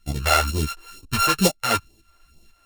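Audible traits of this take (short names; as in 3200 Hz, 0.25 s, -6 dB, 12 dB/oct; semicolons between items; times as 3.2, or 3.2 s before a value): a buzz of ramps at a fixed pitch in blocks of 32 samples; phasing stages 2, 2.2 Hz, lowest notch 150–1500 Hz; tremolo saw up 2 Hz, depth 60%; a shimmering, thickened sound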